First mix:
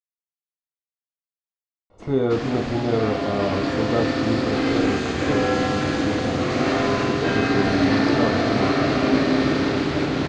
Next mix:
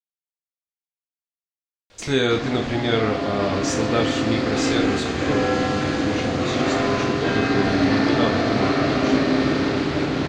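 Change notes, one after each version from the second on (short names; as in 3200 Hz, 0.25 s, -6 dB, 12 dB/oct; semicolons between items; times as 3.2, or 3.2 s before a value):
speech: remove polynomial smoothing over 65 samples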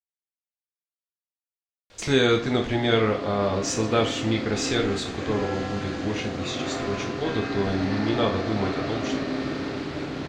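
background -9.0 dB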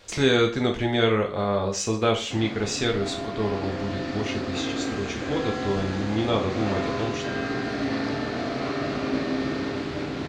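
speech: entry -1.90 s; background: send on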